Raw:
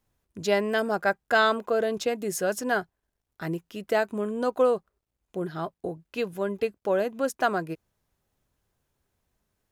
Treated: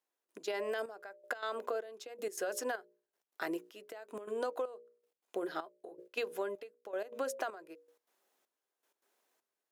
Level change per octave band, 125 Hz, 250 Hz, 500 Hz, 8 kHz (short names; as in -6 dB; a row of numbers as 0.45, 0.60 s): under -25 dB, -15.0 dB, -12.5 dB, -8.5 dB